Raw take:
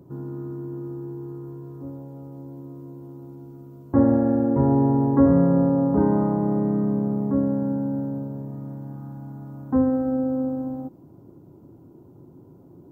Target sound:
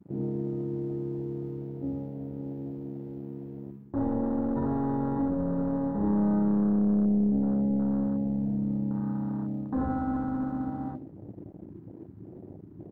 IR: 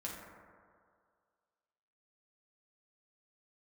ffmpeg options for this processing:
-filter_complex "[0:a]asplit=2[a][b];[b]alimiter=limit=-15dB:level=0:latency=1,volume=3dB[c];[a][c]amix=inputs=2:normalize=0[d];[1:a]atrim=start_sample=2205,atrim=end_sample=4410[e];[d][e]afir=irnorm=-1:irlink=0,aeval=exprs='sgn(val(0))*max(abs(val(0))-0.00422,0)':c=same,areverse,acompressor=threshold=-24dB:ratio=5,areverse,adynamicequalizer=threshold=0.00708:dfrequency=460:dqfactor=2.2:tfrequency=460:tqfactor=2.2:attack=5:release=100:ratio=0.375:range=2.5:mode=cutabove:tftype=bell,aeval=exprs='clip(val(0),-1,0.0501)':c=same,aecho=1:1:82:0.355,afwtdn=0.0126"

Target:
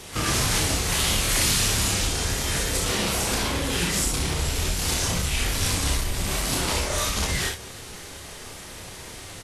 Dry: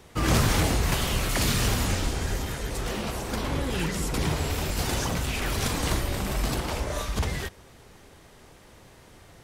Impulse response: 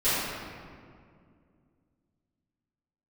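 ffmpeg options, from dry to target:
-filter_complex "[0:a]asettb=1/sr,asplit=3[a][b][c];[a]atrim=end=4.054[d];[b]atrim=start=4.05:end=6.25,asetpts=PTS-STARTPTS,afade=t=in:d=0.004:c=qsin,afade=t=out:st=2.196:d=0.004:c=qsin,lowshelf=f=78:g=10.5[e];[c]atrim=start=6.246[f];[d][e]acrossfade=d=0.004:c1=hsin:c2=qsin[g];[g][f]acrossfade=d=0.004:c1=qsin:c2=hsin,acompressor=threshold=-32dB:ratio=3,asoftclip=type=tanh:threshold=-28dB,highshelf=f=2.2k:g=9.5,aecho=1:1:29|40|62|73:0.668|0.15|0.562|0.316,volume=6dB" -ar 32000 -c:a libvorbis -b:a 32k

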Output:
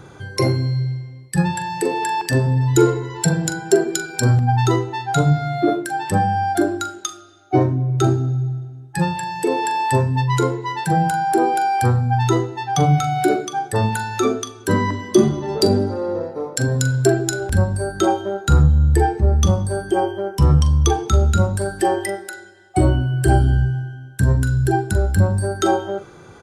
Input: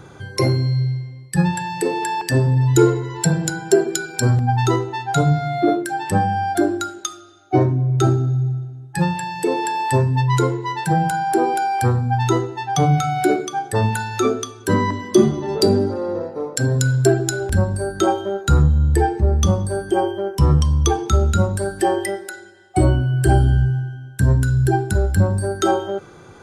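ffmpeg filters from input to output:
-filter_complex "[0:a]asplit=2[a][b];[b]adelay=42,volume=-13dB[c];[a][c]amix=inputs=2:normalize=0"

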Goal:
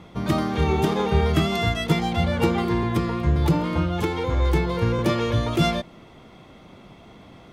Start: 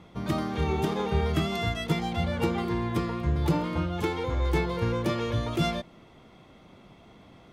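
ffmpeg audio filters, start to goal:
-filter_complex "[0:a]asettb=1/sr,asplit=3[a][b][c];[a]atrim=end=2.834[d];[b]atrim=start=2.83:end=4.99,asetpts=PTS-STARTPTS,afade=t=in:d=0.004:c=qsin,afade=t=out:st=2.156:d=0.004:c=qsin,acrossover=split=250[e][f];[f]acompressor=threshold=-29dB:ratio=6[g];[e][g]amix=inputs=2:normalize=0[h];[c]atrim=start=4.986[i];[d][h]acrossfade=d=0.004:c1=hsin:c2=qsin[j];[j][i]acrossfade=d=0.004:c1=qsin:c2=hsin,volume=6dB"

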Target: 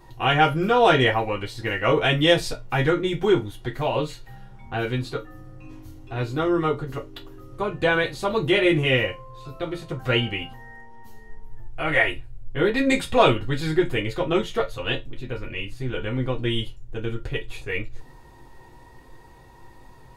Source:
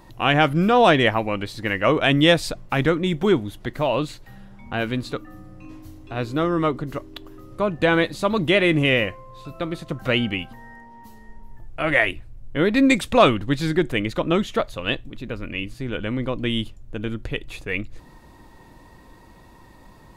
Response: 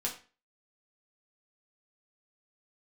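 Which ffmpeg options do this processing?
-filter_complex "[0:a]asettb=1/sr,asplit=3[a][b][c];[a]atrim=end=11.984[d];[b]atrim=start=11.98:end=14.15,asetpts=PTS-STARTPTS,afade=t=in:d=0.004:c=qsin,afade=t=out:st=2.166:d=0.004:c=qsin,bandreject=f=5.9k:w=10[e];[c]atrim=start=14.146[f];[d][e]acrossfade=d=0.004:c1=hsin:c2=qsin[g];[g][f]acrossfade=d=0.004:c1=qsin:c2=hsin[h];[1:a]atrim=start_sample=2205,asetrate=83790,aresample=44100[i];[h][i]afir=irnorm=-1:irlink=0,volume=1dB"

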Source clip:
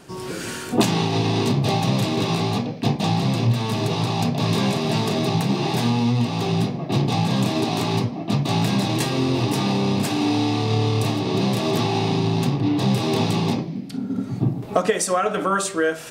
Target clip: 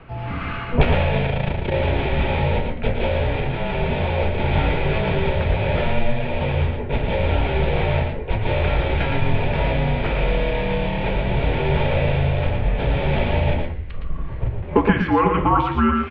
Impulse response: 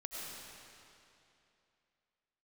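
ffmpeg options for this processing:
-filter_complex "[0:a]asubboost=boost=3:cutoff=130,asettb=1/sr,asplit=3[a][b][c];[a]atrim=end=1.264[d];[b]atrim=start=1.26:end=1.74,asetpts=PTS-STARTPTS,afade=t=in:d=0.004:c=qsin,afade=t=out:st=0.476:d=0.004:c=qsin,tremolo=f=28:d=0.857[e];[c]atrim=start=1.736[f];[d][e]acrossfade=d=0.004:c1=hsin:c2=qsin[g];[g][f]acrossfade=d=0.004:c1=qsin:c2=hsin,asplit=2[h][i];[i]acrusher=bits=5:mode=log:mix=0:aa=0.000001,volume=-8.5dB[j];[h][j]amix=inputs=2:normalize=0,aecho=1:1:114|126:0.501|0.282,highpass=f=200:t=q:w=0.5412,highpass=f=200:t=q:w=1.307,lowpass=f=3k:t=q:w=0.5176,lowpass=f=3k:t=q:w=0.7071,lowpass=f=3k:t=q:w=1.932,afreqshift=-250,volume=1.5dB"

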